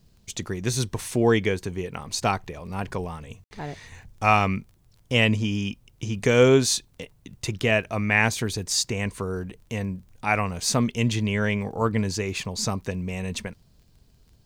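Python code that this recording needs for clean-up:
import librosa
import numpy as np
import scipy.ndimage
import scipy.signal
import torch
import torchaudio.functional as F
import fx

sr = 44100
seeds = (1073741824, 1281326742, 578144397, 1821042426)

y = fx.fix_declick_ar(x, sr, threshold=6.5)
y = fx.fix_ambience(y, sr, seeds[0], print_start_s=13.63, print_end_s=14.13, start_s=3.44, end_s=3.51)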